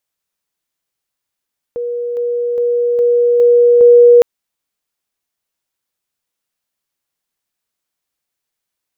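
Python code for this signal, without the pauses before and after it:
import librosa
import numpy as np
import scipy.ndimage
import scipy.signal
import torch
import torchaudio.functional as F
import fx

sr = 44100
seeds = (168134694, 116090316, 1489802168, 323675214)

y = fx.level_ladder(sr, hz=480.0, from_db=-17.5, step_db=3.0, steps=6, dwell_s=0.41, gap_s=0.0)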